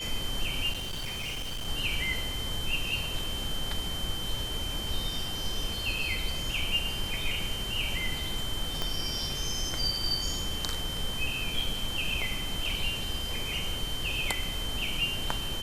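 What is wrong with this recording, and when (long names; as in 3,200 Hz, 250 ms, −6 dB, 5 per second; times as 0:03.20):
whistle 3,100 Hz −35 dBFS
0:00.72–0:01.68: clipping −31.5 dBFS
0:08.82: click −15 dBFS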